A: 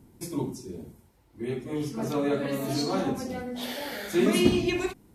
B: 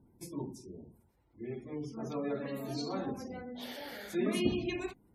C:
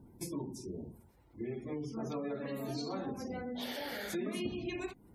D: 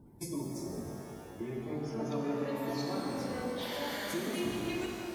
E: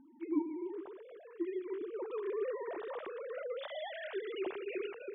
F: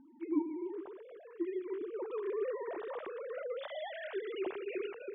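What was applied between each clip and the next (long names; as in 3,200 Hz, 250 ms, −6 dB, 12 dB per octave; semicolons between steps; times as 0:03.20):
gate on every frequency bin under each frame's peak −30 dB strong; level −9 dB
downward compressor 4 to 1, threshold −44 dBFS, peak gain reduction 17 dB; level +7 dB
reverb with rising layers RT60 3.2 s, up +12 semitones, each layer −8 dB, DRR 0.5 dB
three sine waves on the formant tracks; level −3 dB
high-frequency loss of the air 130 metres; level +1 dB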